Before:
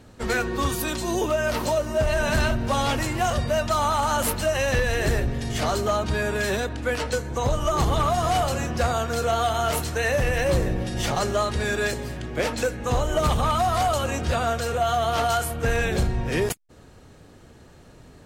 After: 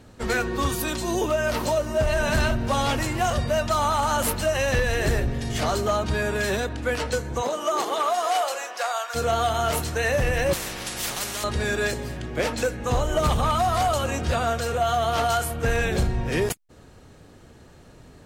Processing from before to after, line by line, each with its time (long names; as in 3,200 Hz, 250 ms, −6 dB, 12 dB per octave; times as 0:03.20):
0:07.41–0:09.14: high-pass filter 240 Hz → 770 Hz 24 dB per octave
0:10.53–0:11.44: every bin compressed towards the loudest bin 4 to 1